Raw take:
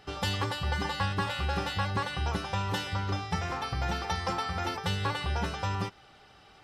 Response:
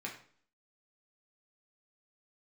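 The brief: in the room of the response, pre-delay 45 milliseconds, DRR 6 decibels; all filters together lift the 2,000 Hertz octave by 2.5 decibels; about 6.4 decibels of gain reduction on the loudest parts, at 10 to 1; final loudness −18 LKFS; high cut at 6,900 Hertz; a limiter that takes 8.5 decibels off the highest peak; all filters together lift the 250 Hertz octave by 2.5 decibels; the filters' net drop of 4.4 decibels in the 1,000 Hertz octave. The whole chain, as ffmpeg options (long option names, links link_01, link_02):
-filter_complex "[0:a]lowpass=6900,equalizer=frequency=250:width_type=o:gain=4,equalizer=frequency=1000:width_type=o:gain=-8,equalizer=frequency=2000:width_type=o:gain=6,acompressor=threshold=-32dB:ratio=10,alimiter=level_in=6dB:limit=-24dB:level=0:latency=1,volume=-6dB,asplit=2[link_01][link_02];[1:a]atrim=start_sample=2205,adelay=45[link_03];[link_02][link_03]afir=irnorm=-1:irlink=0,volume=-6.5dB[link_04];[link_01][link_04]amix=inputs=2:normalize=0,volume=20dB"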